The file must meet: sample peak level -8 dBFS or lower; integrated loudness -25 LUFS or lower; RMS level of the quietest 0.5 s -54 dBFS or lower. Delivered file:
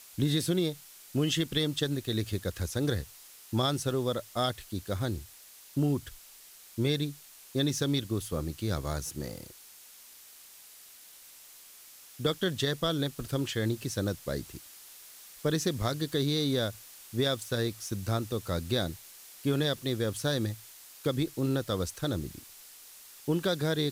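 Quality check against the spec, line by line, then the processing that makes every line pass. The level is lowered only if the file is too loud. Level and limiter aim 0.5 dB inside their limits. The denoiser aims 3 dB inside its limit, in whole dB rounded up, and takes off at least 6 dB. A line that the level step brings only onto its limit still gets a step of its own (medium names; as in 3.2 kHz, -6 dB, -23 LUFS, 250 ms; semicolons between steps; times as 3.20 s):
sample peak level -14.0 dBFS: pass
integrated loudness -31.5 LUFS: pass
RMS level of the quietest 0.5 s -53 dBFS: fail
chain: noise reduction 6 dB, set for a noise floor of -53 dBFS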